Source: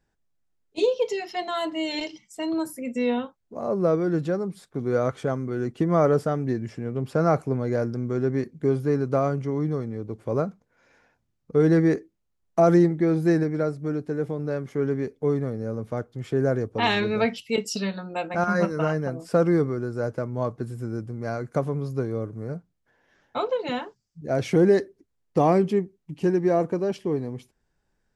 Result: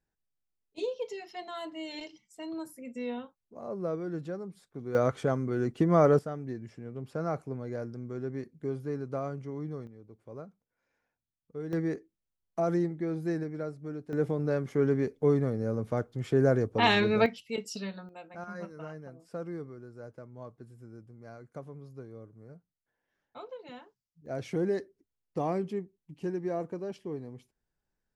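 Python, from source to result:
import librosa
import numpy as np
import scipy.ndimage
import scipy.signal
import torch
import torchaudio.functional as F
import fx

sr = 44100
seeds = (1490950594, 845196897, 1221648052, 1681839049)

y = fx.gain(x, sr, db=fx.steps((0.0, -11.5), (4.95, -2.0), (6.19, -11.5), (9.87, -19.0), (11.73, -11.0), (14.13, -1.0), (17.26, -9.5), (18.09, -18.0), (24.26, -11.5)))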